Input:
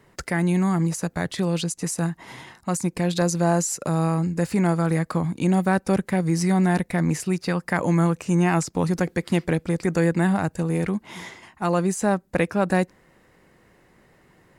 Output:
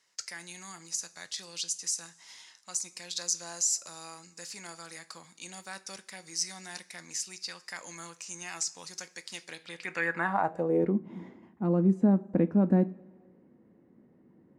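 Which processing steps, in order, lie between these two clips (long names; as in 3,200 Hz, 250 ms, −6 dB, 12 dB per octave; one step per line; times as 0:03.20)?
coupled-rooms reverb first 0.28 s, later 1.7 s, from −18 dB, DRR 10.5 dB
band-pass filter sweep 5,700 Hz → 250 Hz, 0:09.47–0:11.05
level +3.5 dB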